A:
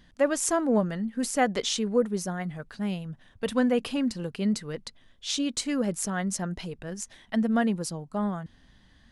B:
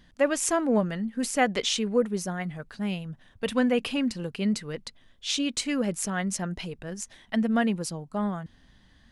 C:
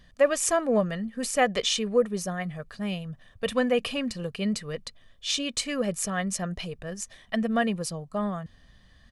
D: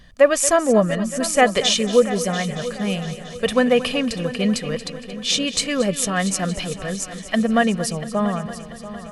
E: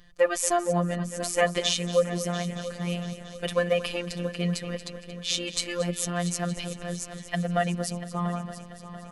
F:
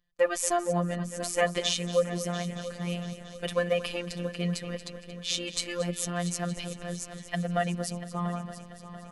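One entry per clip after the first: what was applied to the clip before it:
dynamic bell 2.5 kHz, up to +6 dB, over -49 dBFS, Q 1.8
comb 1.7 ms, depth 46%
multi-head delay 229 ms, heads first and third, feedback 60%, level -15 dB; trim +7.5 dB
robot voice 174 Hz; trim -5.5 dB
gate with hold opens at -36 dBFS; trim -2.5 dB

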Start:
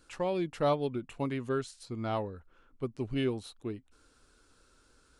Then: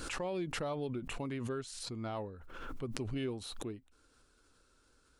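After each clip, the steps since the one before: peak limiter -24.5 dBFS, peak gain reduction 6.5 dB; swell ahead of each attack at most 35 dB/s; trim -5 dB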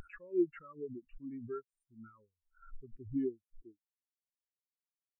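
bass shelf 480 Hz -11 dB; static phaser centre 1.7 kHz, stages 4; spectral contrast expander 4:1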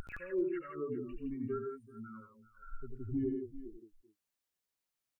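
compression 2.5:1, threshold -40 dBFS, peak gain reduction 10.5 dB; multi-tap echo 72/88/120/165/386/405 ms -15.5/-5.5/-14/-7/-18/-20 dB; trim +5 dB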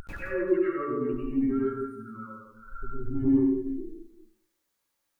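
in parallel at -9 dB: saturation -33 dBFS, distortion -14 dB; on the sum: plate-style reverb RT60 0.65 s, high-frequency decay 0.55×, pre-delay 85 ms, DRR -8 dB

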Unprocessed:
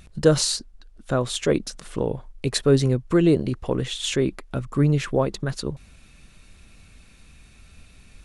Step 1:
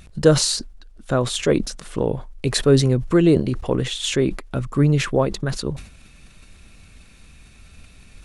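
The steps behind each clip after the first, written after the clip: decay stretcher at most 110 dB/s; trim +2.5 dB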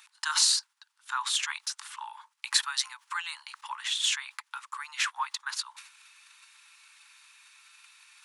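Chebyshev high-pass 860 Hz, order 8; trim -1.5 dB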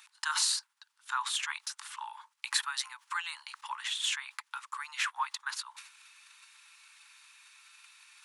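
dynamic bell 5.4 kHz, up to -6 dB, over -39 dBFS, Q 0.79; trim -1 dB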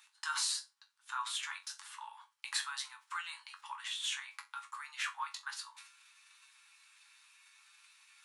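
chord resonator F#2 minor, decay 0.22 s; trim +5 dB

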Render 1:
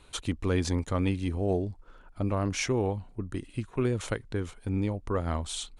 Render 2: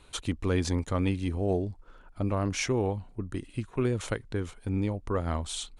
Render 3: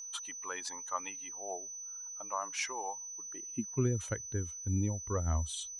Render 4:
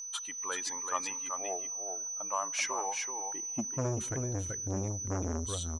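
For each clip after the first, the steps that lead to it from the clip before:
no audible change
expander on every frequency bin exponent 1.5; whistle 6 kHz -38 dBFS; high-pass sweep 940 Hz -> 69 Hz, 3.24–3.91 s; trim -4 dB
delay 383 ms -6 dB; on a send at -24 dB: reverberation RT60 3.4 s, pre-delay 5 ms; on the sum: transformer saturation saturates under 730 Hz; trim +3 dB

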